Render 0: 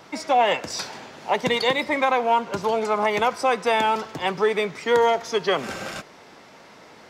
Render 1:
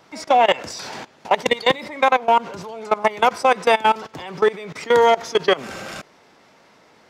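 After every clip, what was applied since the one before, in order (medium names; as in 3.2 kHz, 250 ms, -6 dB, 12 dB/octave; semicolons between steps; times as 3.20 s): level held to a coarse grid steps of 20 dB; trim +7 dB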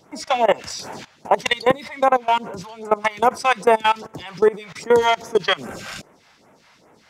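phase shifter stages 2, 2.5 Hz, lowest notch 280–4400 Hz; trim +1.5 dB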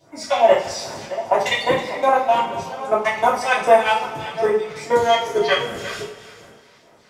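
chunks repeated in reverse 406 ms, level -13.5 dB; two-slope reverb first 0.43 s, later 2.4 s, from -18 dB, DRR -9.5 dB; trim -9 dB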